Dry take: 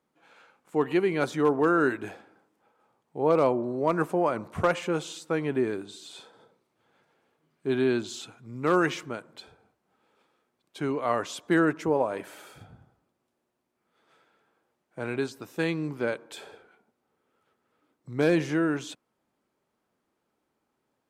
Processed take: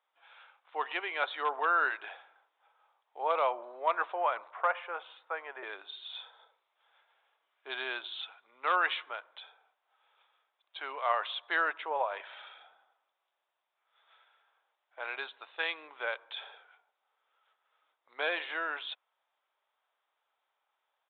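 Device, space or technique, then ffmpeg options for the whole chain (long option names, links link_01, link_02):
musical greeting card: -filter_complex "[0:a]asettb=1/sr,asplit=3[link_01][link_02][link_03];[link_01]atrim=end=4.514[link_04];[link_02]atrim=start=4.51:end=5.63,asetpts=PTS-STARTPTS,afade=type=in:duration=0.004:curve=qsin,afade=type=out:start_time=1.116:duration=0.004:curve=qsin,acrossover=split=340 2100:gain=0.126 1 0.0631[link_05][link_06][link_07];[link_05][link_06][link_07]amix=inputs=3:normalize=0[link_08];[link_03]atrim=start=5.626[link_09];[link_04][link_08]acrossfade=duration=0.004:curve1=hsin:curve2=qsin[link_10];[link_10][link_09]acrossfade=duration=0.004:curve1=qsin:curve2=hsin,aresample=8000,aresample=44100,highpass=frequency=700:width=0.5412,highpass=frequency=700:width=1.3066,equalizer=frequency=3600:width_type=o:width=0.41:gain=6.5"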